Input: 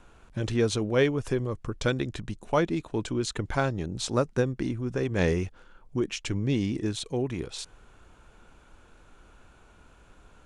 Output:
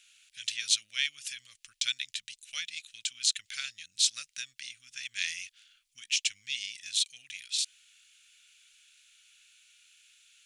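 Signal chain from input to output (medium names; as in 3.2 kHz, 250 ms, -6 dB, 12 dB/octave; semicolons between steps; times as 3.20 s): inverse Chebyshev high-pass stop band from 1 kHz, stop band 50 dB; trim +8.5 dB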